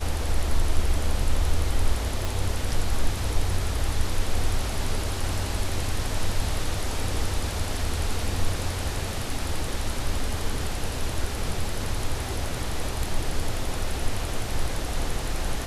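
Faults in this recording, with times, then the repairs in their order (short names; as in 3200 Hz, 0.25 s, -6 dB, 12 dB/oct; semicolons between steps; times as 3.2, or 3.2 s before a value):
2.25 pop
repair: de-click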